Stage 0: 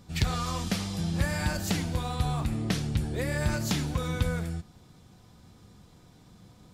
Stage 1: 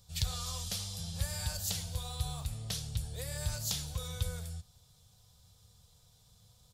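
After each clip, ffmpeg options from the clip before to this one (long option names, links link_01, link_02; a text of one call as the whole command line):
ffmpeg -i in.wav -af "firequalizer=gain_entry='entry(100,0);entry(220,-17);entry(330,-25);entry(460,-6);entry(2100,-9);entry(3400,4);entry(11000,9)':delay=0.05:min_phase=1,volume=-6dB" out.wav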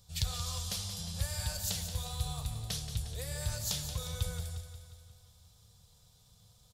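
ffmpeg -i in.wav -af "aecho=1:1:178|356|534|712|890|1068|1246:0.316|0.183|0.106|0.0617|0.0358|0.0208|0.012" out.wav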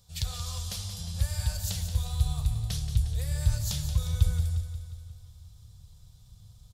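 ffmpeg -i in.wav -af "asubboost=boost=6:cutoff=140" out.wav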